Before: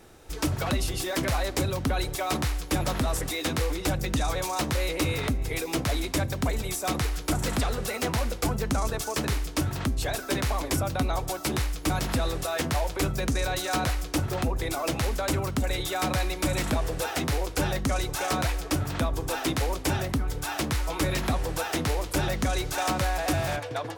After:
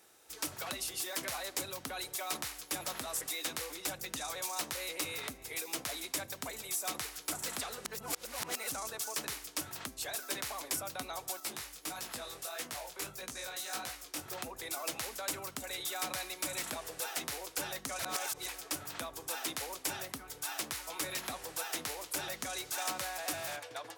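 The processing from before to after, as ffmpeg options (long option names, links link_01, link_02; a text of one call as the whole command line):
ffmpeg -i in.wav -filter_complex "[0:a]asettb=1/sr,asplit=3[link_01][link_02][link_03];[link_01]atrim=end=11.404[link_04];[link_02]atrim=start=11.4:end=14.26,asetpts=PTS-STARTPTS,afade=type=in:duration=0.004:curve=qsin,afade=type=out:start_time=2.856:duration=0.004:curve=qsin,flanger=delay=16:depth=7.3:speed=1.6[link_05];[link_03]atrim=start=14.256[link_06];[link_04][link_05]acrossfade=duration=0.004:curve1=hsin:curve2=qsin[link_07];[link_07][link_06]acrossfade=duration=0.004:curve1=qsin:curve2=hsin,asplit=5[link_08][link_09][link_10][link_11][link_12];[link_08]atrim=end=7.852[link_13];[link_09]atrim=start=7.848:end=8.722,asetpts=PTS-STARTPTS,areverse[link_14];[link_10]atrim=start=8.718:end=17.992[link_15];[link_11]atrim=start=17.988:end=18.482,asetpts=PTS-STARTPTS,areverse[link_16];[link_12]atrim=start=18.478[link_17];[link_13][link_14]acrossfade=duration=0.004:curve1=hsin:curve2=hsin[link_18];[link_18][link_15]acrossfade=duration=0.004:curve1=hsin:curve2=hsin[link_19];[link_19][link_16]acrossfade=duration=0.004:curve1=hsin:curve2=hsin[link_20];[link_20][link_17]acrossfade=duration=0.004:curve1=hsin:curve2=hsin,highpass=frequency=810:poles=1,highshelf=frequency=6000:gain=9,volume=-8.5dB" out.wav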